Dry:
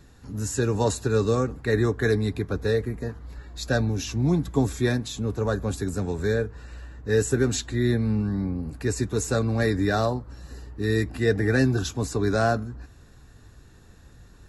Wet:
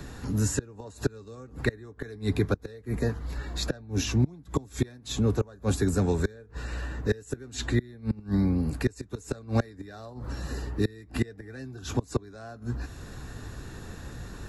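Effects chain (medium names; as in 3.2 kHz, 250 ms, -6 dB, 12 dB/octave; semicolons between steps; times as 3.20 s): inverted gate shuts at -16 dBFS, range -28 dB; three bands compressed up and down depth 40%; trim +4 dB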